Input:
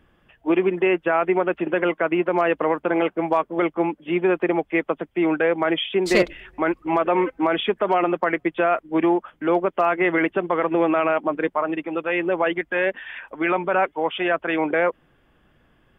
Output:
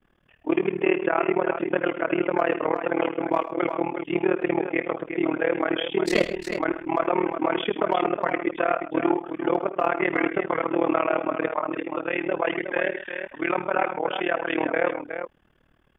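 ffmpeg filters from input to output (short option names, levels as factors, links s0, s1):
-af "agate=range=0.0224:threshold=0.00141:ratio=3:detection=peak,aecho=1:1:56|64|77|130|360:0.1|0.119|0.188|0.188|0.398,tremolo=f=38:d=0.974"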